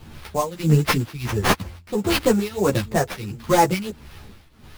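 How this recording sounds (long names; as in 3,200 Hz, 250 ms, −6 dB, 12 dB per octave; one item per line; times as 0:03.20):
phaser sweep stages 2, 3.1 Hz, lowest notch 460–5,000 Hz
aliases and images of a low sample rate 7,500 Hz, jitter 20%
tremolo triangle 1.5 Hz, depth 90%
a shimmering, thickened sound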